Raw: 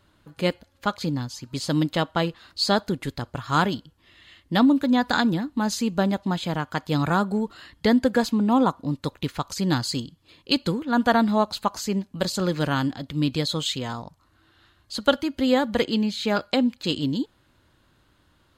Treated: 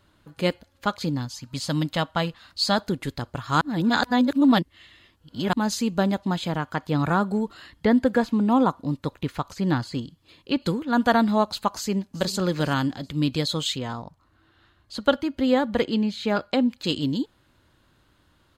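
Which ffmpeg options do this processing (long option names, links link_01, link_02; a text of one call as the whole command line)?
ffmpeg -i in.wav -filter_complex "[0:a]asettb=1/sr,asplit=3[link_01][link_02][link_03];[link_01]atrim=end=1.254[link_04];[link_02]atrim=start=1.25:end=2.78,asetpts=PTS-STARTPTS,afade=type=in:duration=0.004:curve=qsin,afade=type=out:start_time=1.526:duration=0.004:curve=qsin,equalizer=frequency=380:width_type=o:width=0.51:gain=-10.5[link_05];[link_03]atrim=start=2.776[link_06];[link_04][link_05]acrossfade=duration=0.004:curve1=hsin:curve2=qsin[link_07];[link_07][link_06]acrossfade=duration=0.004:curve1=qsin:curve2=hsin,asettb=1/sr,asplit=3[link_08][link_09][link_10];[link_08]atrim=end=6.484[link_11];[link_09]atrim=start=6.48:end=10.62,asetpts=PTS-STARTPTS,afade=type=in:duration=0.004:curve=qsin,afade=type=out:start_time=4.136:duration=0.004:curve=qsin,acrossover=split=2700[link_12][link_13];[link_13]acompressor=threshold=-44dB:ratio=4:attack=1:release=60[link_14];[link_12][link_14]amix=inputs=2:normalize=0[link_15];[link_10]atrim=start=10.616[link_16];[link_11][link_15]acrossfade=duration=0.004:curve1=hsin:curve2=qsin[link_17];[link_17][link_16]acrossfade=duration=0.004:curve1=qsin:curve2=hsin,asplit=2[link_18][link_19];[link_19]afade=type=in:start_time=11.75:duration=0.01,afade=type=out:start_time=12.35:duration=0.01,aecho=0:1:380|760|1140:0.141254|0.0423761|0.0127128[link_20];[link_18][link_20]amix=inputs=2:normalize=0,asettb=1/sr,asplit=3[link_21][link_22][link_23];[link_21]atrim=end=13.764[link_24];[link_22]atrim=start=13.76:end=16.71,asetpts=PTS-STARTPTS,afade=type=in:duration=0.004:curve=qsin,afade=type=out:start_time=2.946:duration=0.004:curve=qsin,highshelf=frequency=3600:gain=-8[link_25];[link_23]atrim=start=16.706[link_26];[link_24][link_25]acrossfade=duration=0.004:curve1=hsin:curve2=qsin[link_27];[link_27][link_26]acrossfade=duration=0.004:curve1=qsin:curve2=hsin,asplit=3[link_28][link_29][link_30];[link_28]atrim=end=3.612[link_31];[link_29]atrim=start=3.608:end=5.532,asetpts=PTS-STARTPTS,areverse[link_32];[link_30]atrim=start=5.528[link_33];[link_31][link_32]acrossfade=duration=0.004:curve1=hsin:curve2=hsin[link_34];[link_34][link_33]acrossfade=duration=0.004:curve1=hsin:curve2=hsin" out.wav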